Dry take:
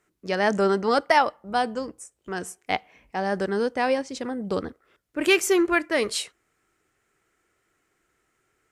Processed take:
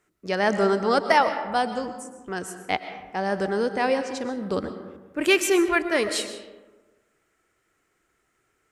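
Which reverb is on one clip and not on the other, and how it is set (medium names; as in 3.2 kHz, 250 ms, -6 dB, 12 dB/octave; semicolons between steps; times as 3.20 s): algorithmic reverb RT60 1.3 s, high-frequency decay 0.45×, pre-delay 80 ms, DRR 9 dB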